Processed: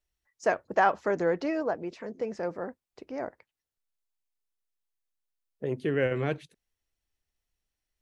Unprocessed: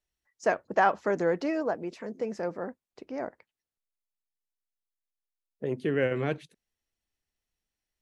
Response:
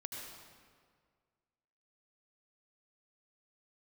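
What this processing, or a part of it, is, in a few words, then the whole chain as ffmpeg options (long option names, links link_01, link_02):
low shelf boost with a cut just above: -filter_complex "[0:a]asettb=1/sr,asplit=3[link_01][link_02][link_03];[link_01]atrim=end=1.084[link_04];[link_02]atrim=start=1.08:end=2.44,asetpts=PTS-STARTPTS,afade=type=in:duration=0.004:curve=qsin,afade=type=out:start_time=1.356:duration=0.004:curve=qsin,lowpass=6800[link_05];[link_03]atrim=start=2.436[link_06];[link_04][link_05]acrossfade=duration=0.004:curve1=hsin:curve2=qsin[link_07];[link_07][link_06]acrossfade=duration=0.004:curve1=qsin:curve2=hsin,lowshelf=frequency=110:gain=6,equalizer=frequency=210:width_type=o:width=0.84:gain=-3.5"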